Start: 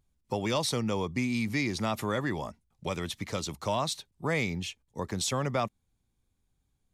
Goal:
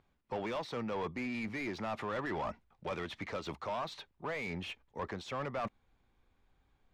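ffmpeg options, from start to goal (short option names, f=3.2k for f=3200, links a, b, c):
-filter_complex "[0:a]aemphasis=mode=production:type=75kf,alimiter=limit=-16dB:level=0:latency=1:release=309,asubboost=boost=3:cutoff=71,areverse,acompressor=threshold=-36dB:ratio=6,areverse,lowpass=2.4k,asplit=2[a][b];[b]highpass=f=720:p=1,volume=19dB,asoftclip=type=tanh:threshold=-29dB[c];[a][c]amix=inputs=2:normalize=0,lowpass=f=1.4k:p=1,volume=-6dB,volume=1dB"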